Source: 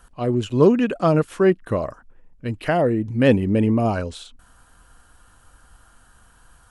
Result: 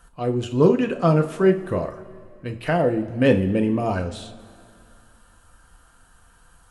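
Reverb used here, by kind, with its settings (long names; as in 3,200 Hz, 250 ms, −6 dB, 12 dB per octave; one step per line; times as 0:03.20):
coupled-rooms reverb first 0.3 s, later 2.5 s, from −18 dB, DRR 4 dB
level −2.5 dB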